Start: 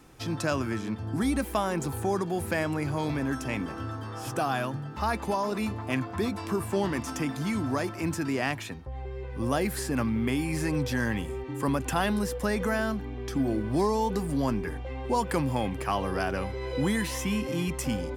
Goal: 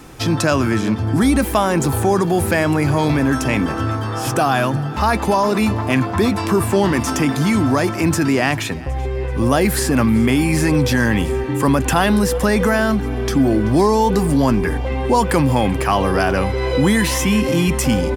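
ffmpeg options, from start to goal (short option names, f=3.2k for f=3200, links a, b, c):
-filter_complex "[0:a]asplit=2[a][b];[b]alimiter=level_in=1dB:limit=-24dB:level=0:latency=1:release=17,volume=-1dB,volume=1dB[c];[a][c]amix=inputs=2:normalize=0,aecho=1:1:383|766|1149|1532:0.0891|0.0499|0.0279|0.0157,volume=8dB"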